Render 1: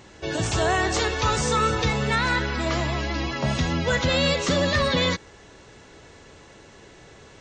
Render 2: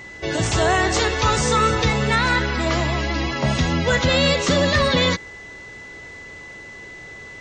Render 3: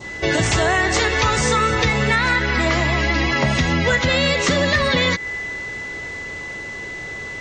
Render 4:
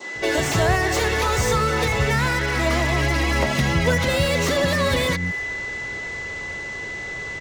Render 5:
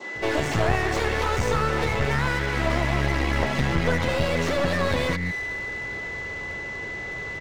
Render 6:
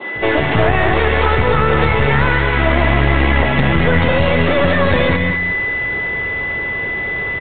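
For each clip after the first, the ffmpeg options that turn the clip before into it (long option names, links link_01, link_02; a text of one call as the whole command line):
ffmpeg -i in.wav -af "aeval=exprs='val(0)+0.00891*sin(2*PI*2000*n/s)':channel_layout=same,volume=4dB" out.wav
ffmpeg -i in.wav -af "adynamicequalizer=threshold=0.0126:dfrequency=2000:dqfactor=2.4:tfrequency=2000:tqfactor=2.4:attack=5:release=100:ratio=0.375:range=3:mode=boostabove:tftype=bell,acompressor=threshold=-22dB:ratio=6,volume=7dB" out.wav
ffmpeg -i in.wav -filter_complex "[0:a]acrossover=split=910[link_01][link_02];[link_02]asoftclip=type=hard:threshold=-24dB[link_03];[link_01][link_03]amix=inputs=2:normalize=0,acrossover=split=250[link_04][link_05];[link_04]adelay=150[link_06];[link_06][link_05]amix=inputs=2:normalize=0" out.wav
ffmpeg -i in.wav -af "lowpass=frequency=2500:poles=1,aeval=exprs='clip(val(0),-1,0.0398)':channel_layout=same" out.wav
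ffmpeg -i in.wav -af "aecho=1:1:203:0.422,alimiter=level_in=10.5dB:limit=-1dB:release=50:level=0:latency=1,volume=-1dB" -ar 8000 -c:a pcm_mulaw out.wav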